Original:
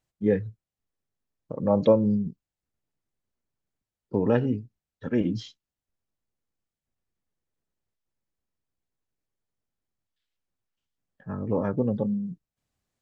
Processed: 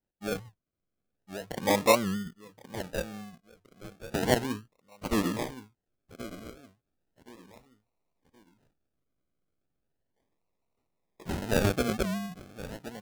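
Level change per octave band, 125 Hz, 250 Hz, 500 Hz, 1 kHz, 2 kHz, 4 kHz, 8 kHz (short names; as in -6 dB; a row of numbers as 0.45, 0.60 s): -4.5 dB, -5.5 dB, -4.0 dB, +5.0 dB, +9.0 dB, +11.5 dB, n/a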